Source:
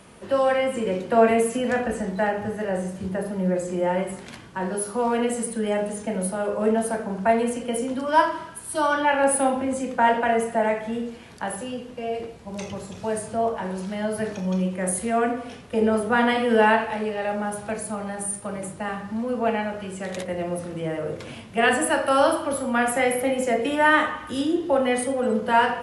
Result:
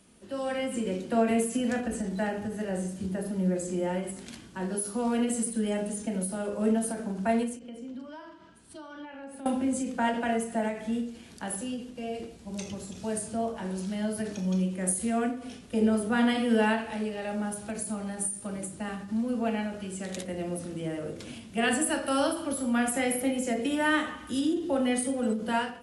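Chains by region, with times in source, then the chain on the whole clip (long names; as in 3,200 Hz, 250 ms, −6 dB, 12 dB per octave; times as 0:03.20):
0:07.59–0:09.46: noise gate −33 dBFS, range −7 dB + high-frequency loss of the air 120 metres + downward compressor 3 to 1, threshold −39 dBFS
whole clip: octave-band graphic EQ 125/250/500/1,000/2,000/8,000 Hz −7/+4/−6/−8/−5/+3 dB; automatic gain control gain up to 7.5 dB; every ending faded ahead of time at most 110 dB per second; level −8.5 dB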